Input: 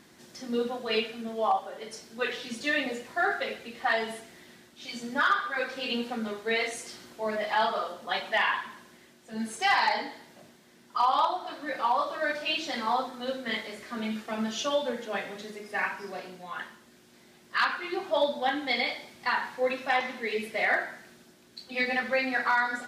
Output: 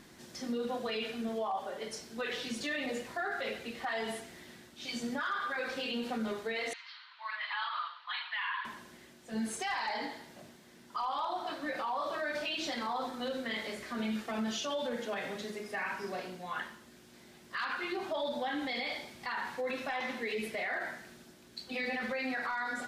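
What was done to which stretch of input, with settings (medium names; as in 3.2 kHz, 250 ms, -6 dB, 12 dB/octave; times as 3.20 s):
6.73–8.65 s: Chebyshev band-pass 980–4300 Hz, order 4
whole clip: bass shelf 66 Hz +10.5 dB; peak limiter -27.5 dBFS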